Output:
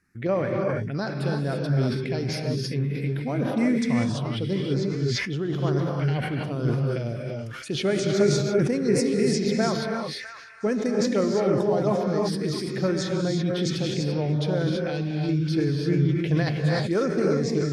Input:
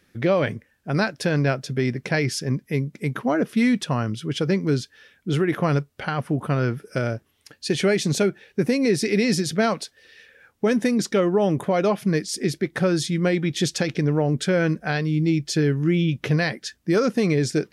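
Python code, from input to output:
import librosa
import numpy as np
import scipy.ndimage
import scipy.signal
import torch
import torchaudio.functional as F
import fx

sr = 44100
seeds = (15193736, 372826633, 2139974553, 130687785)

p1 = scipy.signal.sosfilt(scipy.signal.butter(2, 10000.0, 'lowpass', fs=sr, output='sos'), x)
p2 = fx.level_steps(p1, sr, step_db=18)
p3 = p1 + (p2 * librosa.db_to_amplitude(-3.0))
p4 = fx.env_phaser(p3, sr, low_hz=570.0, high_hz=3700.0, full_db=-13.5)
p5 = p4 + fx.echo_stepped(p4, sr, ms=654, hz=1600.0, octaves=0.7, feedback_pct=70, wet_db=-12.0, dry=0)
p6 = fx.rev_gated(p5, sr, seeds[0], gate_ms=360, shape='rising', drr_db=0.0)
p7 = fx.sustainer(p6, sr, db_per_s=37.0)
y = p7 * librosa.db_to_amplitude(-8.0)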